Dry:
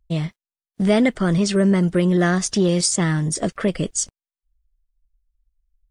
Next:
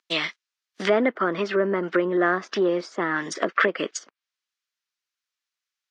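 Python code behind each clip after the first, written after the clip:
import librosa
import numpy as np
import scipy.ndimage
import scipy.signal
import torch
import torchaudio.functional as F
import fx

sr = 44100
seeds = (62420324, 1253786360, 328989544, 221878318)

y = scipy.signal.sosfilt(scipy.signal.butter(4, 300.0, 'highpass', fs=sr, output='sos'), x)
y = fx.env_lowpass_down(y, sr, base_hz=790.0, full_db=-20.0)
y = fx.band_shelf(y, sr, hz=2700.0, db=13.5, octaves=2.9)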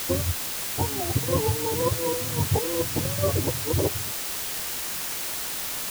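y = fx.octave_mirror(x, sr, pivot_hz=420.0)
y = fx.over_compress(y, sr, threshold_db=-33.0, ratio=-1.0)
y = fx.quant_dither(y, sr, seeds[0], bits=6, dither='triangular')
y = F.gain(torch.from_numpy(y), 5.0).numpy()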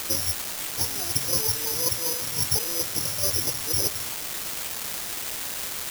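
y = (np.kron(x[::8], np.eye(8)[0]) * 8)[:len(x)]
y = F.gain(torch.from_numpy(y), -10.0).numpy()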